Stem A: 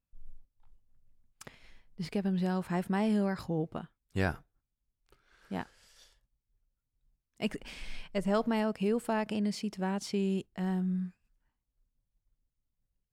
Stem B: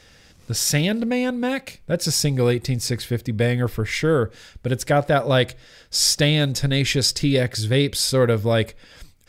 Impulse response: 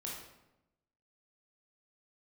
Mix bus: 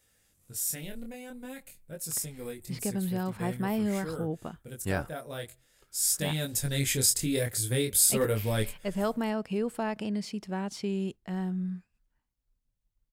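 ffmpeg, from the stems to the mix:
-filter_complex "[0:a]adelay=700,volume=-0.5dB[a];[1:a]aexciter=amount=8.8:drive=3.2:freq=7.3k,flanger=delay=18.5:depth=7.3:speed=0.47,volume=-7dB,afade=t=in:st=5.91:d=0.79:silence=0.298538[b];[a][b]amix=inputs=2:normalize=0"

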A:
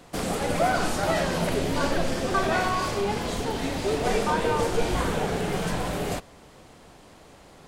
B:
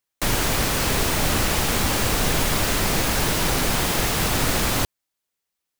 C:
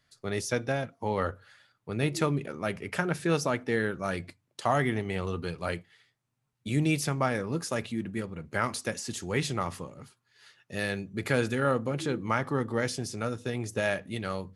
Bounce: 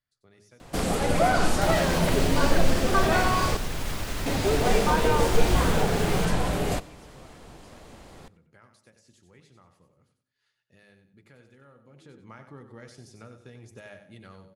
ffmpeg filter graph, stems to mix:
-filter_complex "[0:a]adelay=600,volume=1dB,asplit=3[a][b][c];[a]atrim=end=3.57,asetpts=PTS-STARTPTS,afade=t=out:st=3.566:d=0.004:c=hsin[d];[b]atrim=start=3.57:end=4.26,asetpts=PTS-STARTPTS,volume=0[e];[c]atrim=start=4.26,asetpts=PTS-STARTPTS,afade=t=in:d=0.004:c=hsin[f];[d][e][f]concat=n=3:v=0:a=1,asplit=2[g][h];[h]volume=-23.5dB[i];[1:a]adelay=1400,volume=-2dB[j];[2:a]bandreject=f=51.81:t=h:w=4,bandreject=f=103.62:t=h:w=4,bandreject=f=155.43:t=h:w=4,bandreject=f=207.24:t=h:w=4,bandreject=f=259.05:t=h:w=4,bandreject=f=310.86:t=h:w=4,bandreject=f=362.67:t=h:w=4,bandreject=f=414.48:t=h:w=4,bandreject=f=466.29:t=h:w=4,bandreject=f=518.1:t=h:w=4,bandreject=f=569.91:t=h:w=4,bandreject=f=621.72:t=h:w=4,bandreject=f=673.53:t=h:w=4,bandreject=f=725.34:t=h:w=4,bandreject=f=777.15:t=h:w=4,bandreject=f=828.96:t=h:w=4,bandreject=f=880.77:t=h:w=4,acompressor=threshold=-40dB:ratio=2,volume=-9dB,afade=t=in:st=11.79:d=0.68:silence=0.298538,asplit=2[k][l];[l]volume=-9.5dB[m];[j][k]amix=inputs=2:normalize=0,highshelf=f=8.5k:g=-6,alimiter=limit=-23.5dB:level=0:latency=1:release=450,volume=0dB[n];[i][m]amix=inputs=2:normalize=0,aecho=0:1:93|186|279|372:1|0.3|0.09|0.027[o];[g][n][o]amix=inputs=3:normalize=0,lowshelf=f=83:g=8"

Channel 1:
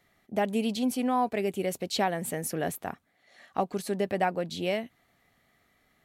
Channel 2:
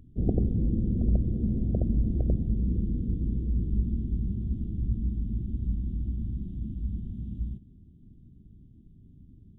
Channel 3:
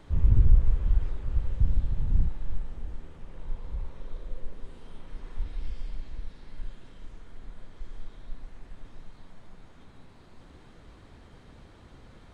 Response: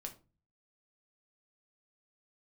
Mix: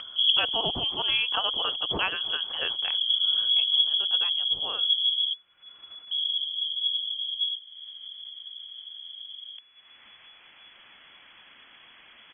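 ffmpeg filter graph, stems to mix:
-filter_complex "[0:a]aexciter=amount=5.3:drive=6.6:freq=2.1k,lowpass=f=5.6k:t=q:w=2.9,volume=-3dB,afade=t=out:st=3.36:d=0.23:silence=0.251189,asplit=2[a][b];[1:a]volume=3dB,asplit=3[c][d][e];[c]atrim=end=5.33,asetpts=PTS-STARTPTS,afade=t=out:st=5.326:d=0.004:c=hsin[f];[d]atrim=start=5.33:end=6.11,asetpts=PTS-STARTPTS,volume=0[g];[e]atrim=start=6.11,asetpts=PTS-STARTPTS,afade=t=in:d=0.004:c=hsin[h];[f][g][h]concat=n=3:v=0:a=1[i];[2:a]tiltshelf=f=670:g=-8.5,aeval=exprs='(tanh(31.6*val(0)+0.55)-tanh(0.55))/31.6':c=same,adelay=250,volume=-18.5dB[j];[b]apad=whole_len=422666[k];[i][k]sidechaincompress=threshold=-34dB:ratio=8:attack=40:release=272[l];[a][l][j]amix=inputs=3:normalize=0,lowpass=f=2.9k:t=q:w=0.5098,lowpass=f=2.9k:t=q:w=0.6013,lowpass=f=2.9k:t=q:w=0.9,lowpass=f=2.9k:t=q:w=2.563,afreqshift=-3400,acompressor=mode=upward:threshold=-33dB:ratio=2.5"

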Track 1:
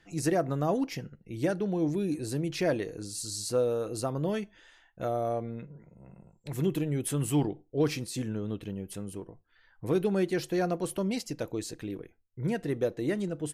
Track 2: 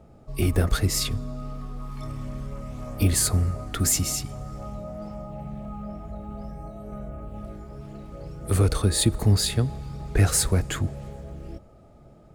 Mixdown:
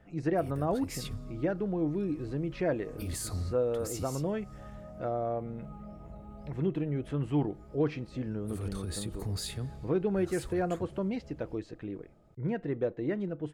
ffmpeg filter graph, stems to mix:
-filter_complex "[0:a]lowpass=2.1k,volume=-2dB,asplit=2[a][b];[1:a]alimiter=limit=-17dB:level=0:latency=1:release=32,volume=-10.5dB[c];[b]apad=whole_len=544469[d];[c][d]sidechaincompress=threshold=-36dB:ratio=5:attack=7.5:release=209[e];[a][e]amix=inputs=2:normalize=0"

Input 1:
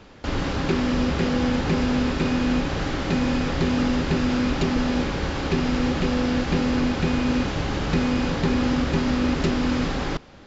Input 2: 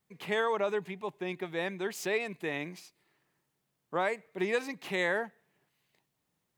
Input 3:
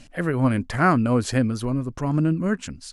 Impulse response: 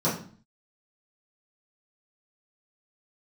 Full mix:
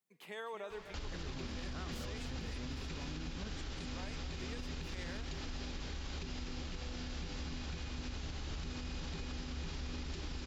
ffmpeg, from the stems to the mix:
-filter_complex "[0:a]equalizer=f=125:t=o:w=1:g=-9,equalizer=f=250:t=o:w=1:g=-10,equalizer=f=500:t=o:w=1:g=-6,acrossover=split=470|3000[a][b][c];[b]acompressor=threshold=-48dB:ratio=2.5[d];[a][d][c]amix=inputs=3:normalize=0,alimiter=limit=-21.5dB:level=0:latency=1:release=419,adelay=700,volume=-3.5dB,asplit=2[e][f];[f]volume=-7dB[g];[1:a]highpass=190,highshelf=f=3.6k:g=6.5,volume=-13.5dB,asplit=2[h][i];[i]volume=-12.5dB[j];[2:a]lowpass=8.2k,acompressor=threshold=-22dB:ratio=6,adelay=950,volume=-15.5dB[k];[g][j]amix=inputs=2:normalize=0,aecho=0:1:251|502|753|1004|1255|1506|1757|2008|2259:1|0.59|0.348|0.205|0.121|0.0715|0.0422|0.0249|0.0147[l];[e][h][k][l]amix=inputs=4:normalize=0,alimiter=level_in=9.5dB:limit=-24dB:level=0:latency=1:release=171,volume=-9.5dB"

